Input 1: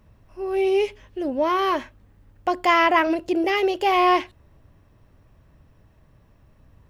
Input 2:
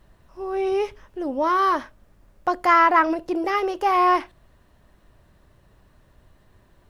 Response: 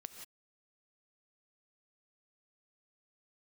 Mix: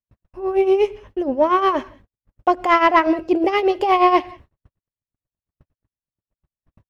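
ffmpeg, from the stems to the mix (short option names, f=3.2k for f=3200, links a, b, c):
-filter_complex "[0:a]tremolo=f=8.4:d=0.79,acontrast=78,volume=-2dB,asplit=2[a][b];[b]volume=-8dB[c];[1:a]highpass=250,acompressor=threshold=-20dB:ratio=6,adelay=0.5,volume=-5dB[d];[2:a]atrim=start_sample=2205[e];[c][e]afir=irnorm=-1:irlink=0[f];[a][d][f]amix=inputs=3:normalize=0,agate=range=-48dB:threshold=-44dB:ratio=16:detection=peak,highshelf=f=4.4k:g=-11"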